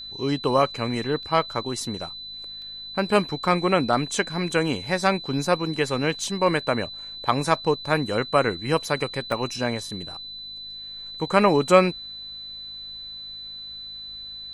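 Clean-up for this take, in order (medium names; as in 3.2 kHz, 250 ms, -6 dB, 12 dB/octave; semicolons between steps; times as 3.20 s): de-hum 52.5 Hz, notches 5; band-stop 4 kHz, Q 30; interpolate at 1.23/2.62/6.19/9.32 s, 1 ms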